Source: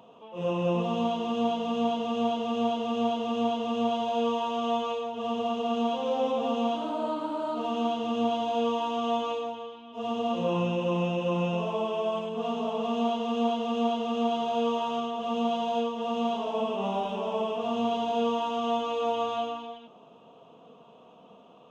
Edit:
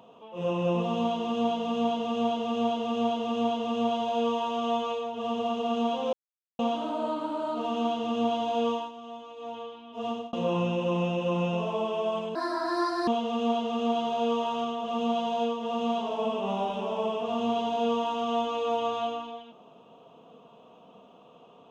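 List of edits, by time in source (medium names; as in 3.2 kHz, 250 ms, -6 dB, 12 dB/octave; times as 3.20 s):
6.13–6.59 s: mute
8.71–9.57 s: dip -14 dB, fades 0.21 s
10.08–10.33 s: fade out
12.35–13.43 s: speed 149%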